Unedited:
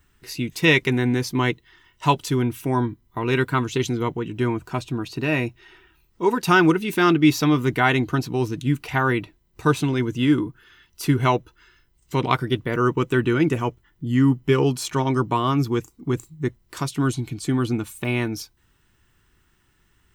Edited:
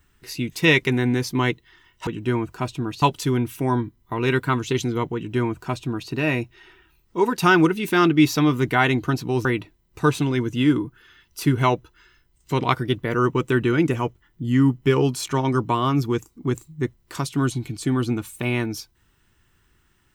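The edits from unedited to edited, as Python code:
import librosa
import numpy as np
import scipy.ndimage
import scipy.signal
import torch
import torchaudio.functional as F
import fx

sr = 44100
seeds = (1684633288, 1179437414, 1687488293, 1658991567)

y = fx.edit(x, sr, fx.duplicate(start_s=4.2, length_s=0.95, to_s=2.07),
    fx.cut(start_s=8.5, length_s=0.57), tone=tone)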